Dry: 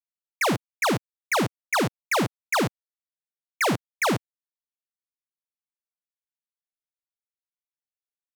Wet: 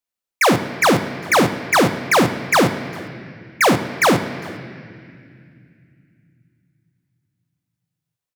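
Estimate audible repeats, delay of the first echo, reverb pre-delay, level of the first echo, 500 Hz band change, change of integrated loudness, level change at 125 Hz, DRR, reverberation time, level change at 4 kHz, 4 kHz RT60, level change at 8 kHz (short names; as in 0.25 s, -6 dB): 1, 0.404 s, 4 ms, -24.0 dB, +10.0 dB, +8.5 dB, +7.5 dB, 8.0 dB, 2.2 s, +8.0 dB, 2.0 s, +8.0 dB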